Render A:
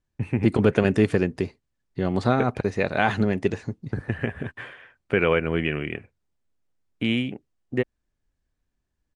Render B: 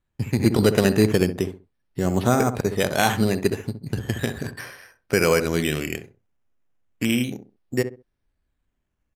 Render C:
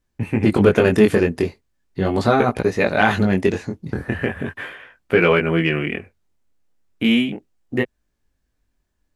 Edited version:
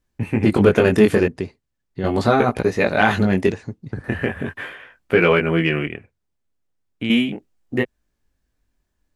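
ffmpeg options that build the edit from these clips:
-filter_complex "[0:a]asplit=3[s0][s1][s2];[2:a]asplit=4[s3][s4][s5][s6];[s3]atrim=end=1.282[s7];[s0]atrim=start=1.278:end=2.042[s8];[s4]atrim=start=2.038:end=3.522[s9];[s1]atrim=start=3.518:end=4.042[s10];[s5]atrim=start=4.038:end=5.872[s11];[s2]atrim=start=5.868:end=7.102[s12];[s6]atrim=start=7.098[s13];[s7][s8]acrossfade=d=0.004:c1=hsin:c2=hsin[s14];[s14][s9]acrossfade=d=0.004:c1=hsin:c2=hsin[s15];[s15][s10]acrossfade=d=0.004:c1=hsin:c2=hsin[s16];[s16][s11]acrossfade=d=0.004:c1=hsin:c2=hsin[s17];[s17][s12]acrossfade=d=0.004:c1=hsin:c2=hsin[s18];[s18][s13]acrossfade=d=0.004:c1=hsin:c2=hsin"

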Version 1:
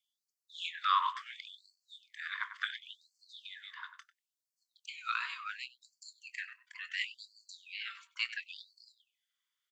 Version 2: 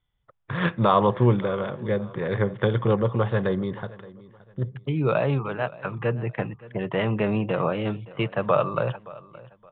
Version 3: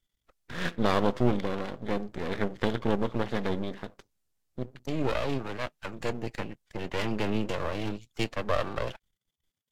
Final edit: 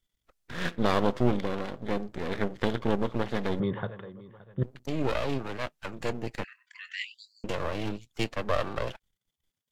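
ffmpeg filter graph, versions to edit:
-filter_complex "[2:a]asplit=3[s0][s1][s2];[s0]atrim=end=3.602[s3];[1:a]atrim=start=3.598:end=4.632[s4];[s1]atrim=start=4.628:end=6.442[s5];[0:a]atrim=start=6.438:end=7.442[s6];[s2]atrim=start=7.438[s7];[s3][s4]acrossfade=d=0.004:c1=hsin:c2=hsin[s8];[s8][s5]acrossfade=d=0.004:c1=hsin:c2=hsin[s9];[s9][s6]acrossfade=d=0.004:c1=hsin:c2=hsin[s10];[s10][s7]acrossfade=d=0.004:c1=hsin:c2=hsin"

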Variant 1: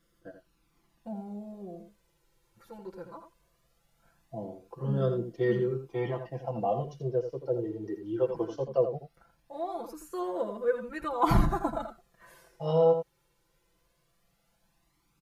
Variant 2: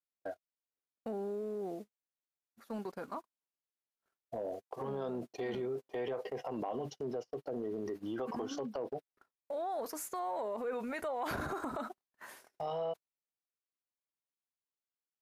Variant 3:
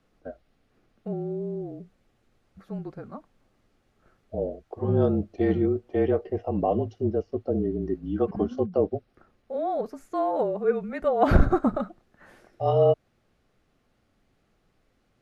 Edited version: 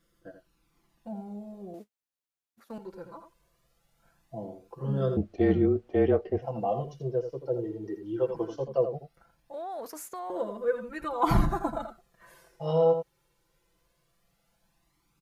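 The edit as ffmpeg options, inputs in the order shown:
-filter_complex "[1:a]asplit=2[s0][s1];[0:a]asplit=4[s2][s3][s4][s5];[s2]atrim=end=1.742[s6];[s0]atrim=start=1.738:end=2.782[s7];[s3]atrim=start=2.778:end=5.172[s8];[2:a]atrim=start=5.168:end=6.422[s9];[s4]atrim=start=6.418:end=9.542[s10];[s1]atrim=start=9.538:end=10.302[s11];[s5]atrim=start=10.298[s12];[s6][s7]acrossfade=d=0.004:c1=hsin:c2=hsin[s13];[s13][s8]acrossfade=d=0.004:c1=hsin:c2=hsin[s14];[s14][s9]acrossfade=d=0.004:c1=hsin:c2=hsin[s15];[s15][s10]acrossfade=d=0.004:c1=hsin:c2=hsin[s16];[s16][s11]acrossfade=d=0.004:c1=hsin:c2=hsin[s17];[s17][s12]acrossfade=d=0.004:c1=hsin:c2=hsin"

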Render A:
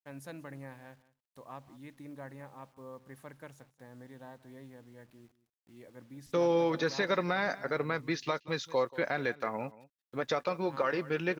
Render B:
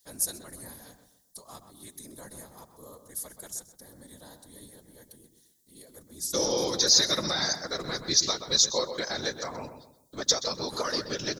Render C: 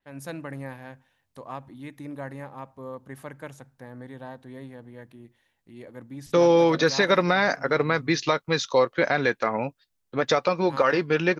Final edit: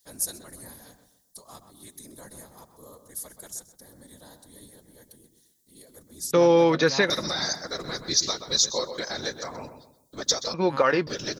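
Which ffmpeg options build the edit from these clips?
-filter_complex "[2:a]asplit=2[s0][s1];[1:a]asplit=3[s2][s3][s4];[s2]atrim=end=6.312[s5];[s0]atrim=start=6.308:end=7.102[s6];[s3]atrim=start=7.098:end=10.542[s7];[s1]atrim=start=10.538:end=11.072[s8];[s4]atrim=start=11.068[s9];[s5][s6]acrossfade=d=0.004:c1=hsin:c2=hsin[s10];[s10][s7]acrossfade=d=0.004:c1=hsin:c2=hsin[s11];[s11][s8]acrossfade=d=0.004:c1=hsin:c2=hsin[s12];[s12][s9]acrossfade=d=0.004:c1=hsin:c2=hsin"

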